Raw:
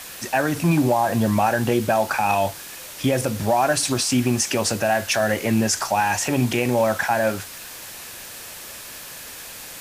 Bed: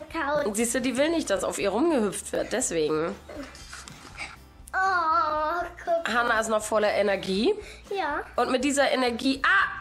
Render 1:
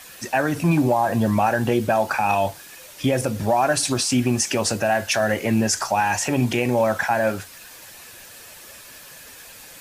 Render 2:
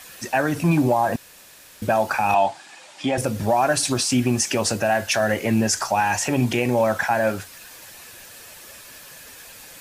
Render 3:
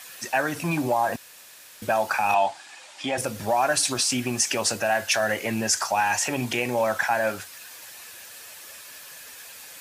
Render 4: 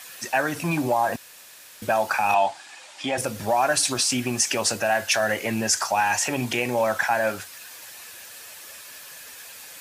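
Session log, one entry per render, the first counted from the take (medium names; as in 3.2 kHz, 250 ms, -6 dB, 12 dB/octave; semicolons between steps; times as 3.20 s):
noise reduction 7 dB, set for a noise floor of -38 dBFS
1.16–1.82 s: room tone; 2.34–3.18 s: cabinet simulation 220–7900 Hz, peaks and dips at 470 Hz -9 dB, 800 Hz +10 dB, 6 kHz -5 dB
high-pass 56 Hz; bass shelf 460 Hz -10.5 dB
trim +1 dB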